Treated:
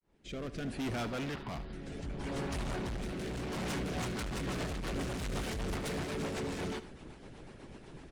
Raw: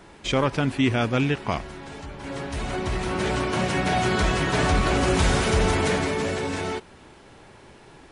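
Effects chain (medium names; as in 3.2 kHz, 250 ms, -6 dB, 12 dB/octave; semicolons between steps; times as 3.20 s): fade-in on the opening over 1.24 s; peaking EQ 92 Hz -10.5 dB 0.71 oct; harmonic-percussive split harmonic -10 dB; bass shelf 290 Hz +10.5 dB; peak limiter -17 dBFS, peak gain reduction 6.5 dB; 1.03–1.73 s: rippled Chebyshev low-pass 5 kHz, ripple 3 dB; overload inside the chain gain 33.5 dB; rotary cabinet horn 0.7 Hz, later 8 Hz, at 3.51 s; on a send: delay 75 ms -14.5 dB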